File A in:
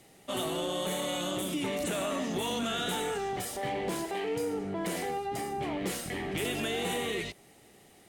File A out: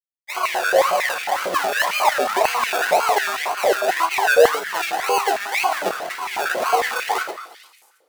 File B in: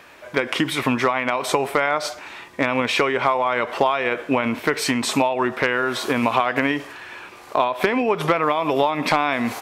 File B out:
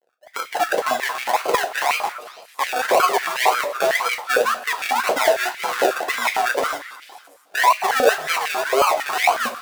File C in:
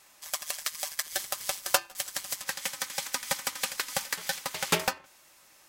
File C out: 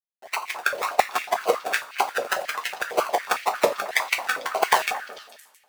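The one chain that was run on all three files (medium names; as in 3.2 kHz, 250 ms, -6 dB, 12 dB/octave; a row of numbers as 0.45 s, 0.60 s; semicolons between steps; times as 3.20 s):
expander on every frequency bin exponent 2; in parallel at 0 dB: compression, threshold -35 dBFS; on the sum: peak limiter -15.5 dBFS; level rider gain up to 4 dB; decimation with a swept rate 34×, swing 60% 1.9 Hz; repeats whose band climbs or falls 223 ms, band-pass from 1.5 kHz, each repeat 1.4 oct, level -11 dB; companded quantiser 6-bit; two-slope reverb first 0.26 s, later 1.8 s, from -21 dB, DRR 3.5 dB; step-sequenced high-pass 11 Hz 550–2200 Hz; peak normalisation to -1.5 dBFS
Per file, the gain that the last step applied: +6.0 dB, +0.5 dB, +8.5 dB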